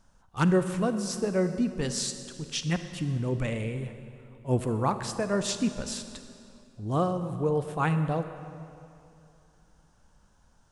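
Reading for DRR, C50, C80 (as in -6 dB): 9.0 dB, 9.5 dB, 10.5 dB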